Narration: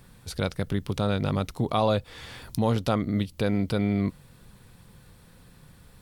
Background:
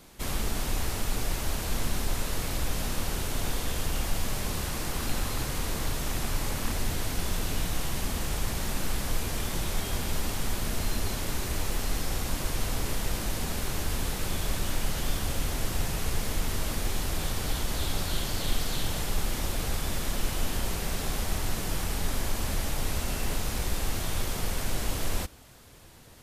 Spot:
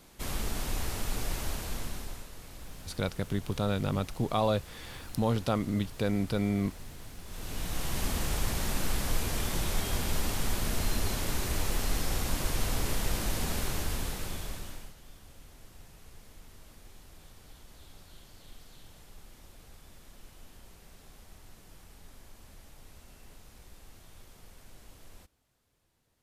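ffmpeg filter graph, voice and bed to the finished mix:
-filter_complex "[0:a]adelay=2600,volume=-4dB[a];[1:a]volume=12.5dB,afade=t=out:st=1.42:d=0.87:silence=0.223872,afade=t=in:st=7.26:d=0.79:silence=0.158489,afade=t=out:st=13.57:d=1.38:silence=0.0749894[b];[a][b]amix=inputs=2:normalize=0"

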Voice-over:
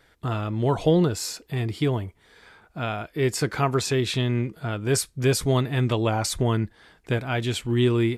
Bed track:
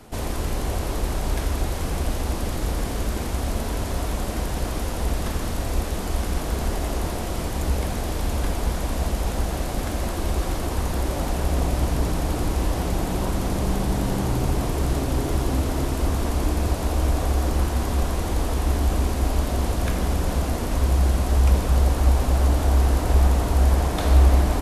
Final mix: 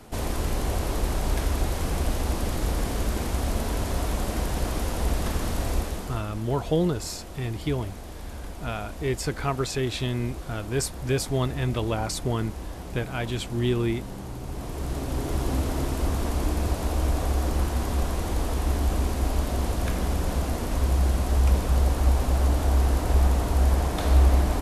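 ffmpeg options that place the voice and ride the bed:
-filter_complex "[0:a]adelay=5850,volume=-4dB[a];[1:a]volume=9dB,afade=t=out:st=5.69:d=0.55:silence=0.251189,afade=t=in:st=14.44:d=1.08:silence=0.316228[b];[a][b]amix=inputs=2:normalize=0"

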